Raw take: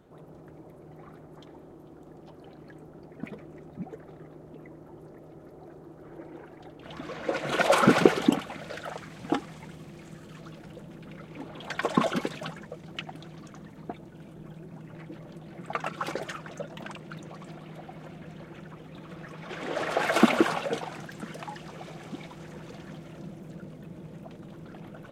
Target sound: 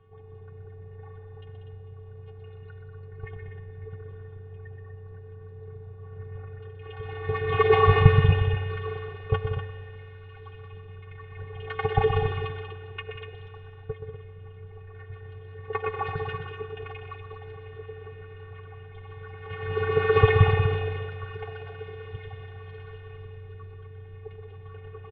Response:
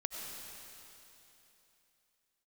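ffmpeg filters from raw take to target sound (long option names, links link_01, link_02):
-filter_complex "[0:a]asplit=2[link_01][link_02];[1:a]atrim=start_sample=2205,asetrate=57330,aresample=44100,lowpass=3300[link_03];[link_02][link_03]afir=irnorm=-1:irlink=0,volume=-3.5dB[link_04];[link_01][link_04]amix=inputs=2:normalize=0,afftfilt=real='hypot(re,im)*cos(PI*b)':imag='0':win_size=512:overlap=0.75,highpass=frequency=240:width_type=q:width=0.5412,highpass=frequency=240:width_type=q:width=1.307,lowpass=frequency=3500:width_type=q:width=0.5176,lowpass=frequency=3500:width_type=q:width=0.7071,lowpass=frequency=3500:width_type=q:width=1.932,afreqshift=-250,aecho=1:1:7.1:0.47,aecho=1:1:125.4|189.5|244.9:0.398|0.355|0.355,volume=2dB"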